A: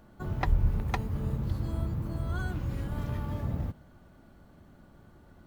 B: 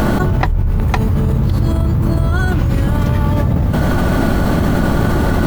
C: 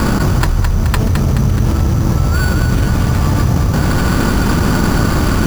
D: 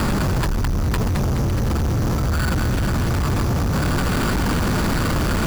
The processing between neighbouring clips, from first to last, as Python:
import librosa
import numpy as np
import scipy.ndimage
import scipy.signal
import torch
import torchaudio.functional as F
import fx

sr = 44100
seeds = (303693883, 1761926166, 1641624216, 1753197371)

y1 = fx.env_flatten(x, sr, amount_pct=100)
y1 = y1 * librosa.db_to_amplitude(5.5)
y2 = fx.lower_of_two(y1, sr, delay_ms=0.72)
y2 = fx.sample_hold(y2, sr, seeds[0], rate_hz=6000.0, jitter_pct=0)
y2 = fx.echo_thinned(y2, sr, ms=213, feedback_pct=59, hz=420.0, wet_db=-5.5)
y2 = y2 * librosa.db_to_amplitude(1.5)
y3 = np.clip(y2, -10.0 ** (-18.0 / 20.0), 10.0 ** (-18.0 / 20.0))